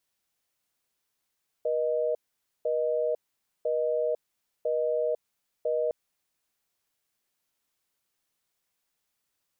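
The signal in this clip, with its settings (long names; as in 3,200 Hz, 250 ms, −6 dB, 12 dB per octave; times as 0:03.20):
call progress tone busy tone, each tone −27 dBFS 4.26 s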